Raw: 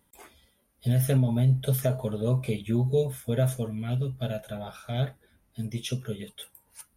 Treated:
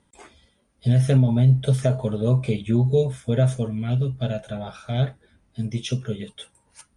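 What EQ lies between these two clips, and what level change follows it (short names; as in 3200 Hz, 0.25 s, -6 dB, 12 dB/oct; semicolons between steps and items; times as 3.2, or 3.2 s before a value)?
steep low-pass 9100 Hz 48 dB/oct; bell 150 Hz +2.5 dB 2.8 oct; +3.5 dB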